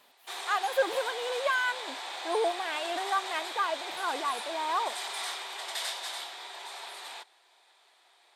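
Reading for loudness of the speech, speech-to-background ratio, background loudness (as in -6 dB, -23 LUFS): -31.5 LUFS, 5.5 dB, -37.0 LUFS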